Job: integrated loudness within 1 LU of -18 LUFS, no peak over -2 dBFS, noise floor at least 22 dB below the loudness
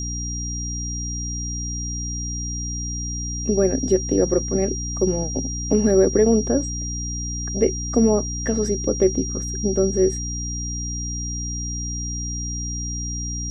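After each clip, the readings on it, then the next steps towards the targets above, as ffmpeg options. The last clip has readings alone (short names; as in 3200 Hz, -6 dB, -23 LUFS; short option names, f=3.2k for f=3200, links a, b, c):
hum 60 Hz; harmonics up to 300 Hz; hum level -27 dBFS; steady tone 5700 Hz; tone level -29 dBFS; loudness -23.0 LUFS; peak -5.5 dBFS; loudness target -18.0 LUFS
-> -af "bandreject=f=60:t=h:w=4,bandreject=f=120:t=h:w=4,bandreject=f=180:t=h:w=4,bandreject=f=240:t=h:w=4,bandreject=f=300:t=h:w=4"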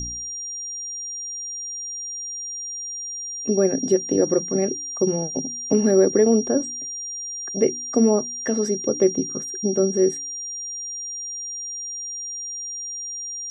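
hum none; steady tone 5700 Hz; tone level -29 dBFS
-> -af "bandreject=f=5.7k:w=30"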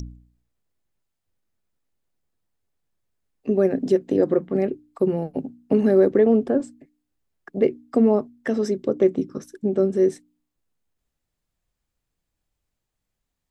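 steady tone none; loudness -21.5 LUFS; peak -6.5 dBFS; loudness target -18.0 LUFS
-> -af "volume=3.5dB"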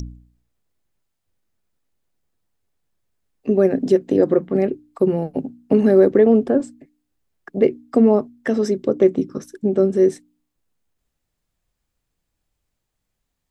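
loudness -18.0 LUFS; peak -3.0 dBFS; noise floor -78 dBFS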